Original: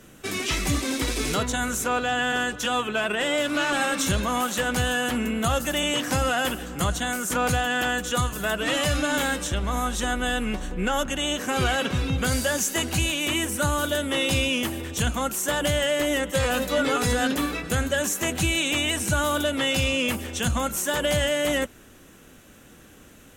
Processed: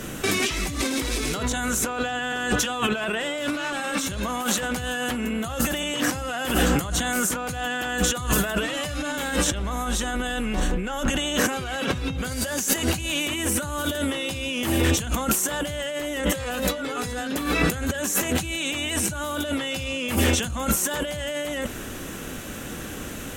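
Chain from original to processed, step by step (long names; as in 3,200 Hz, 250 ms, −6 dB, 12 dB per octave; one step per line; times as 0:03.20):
compressor whose output falls as the input rises −34 dBFS, ratio −1
level +7.5 dB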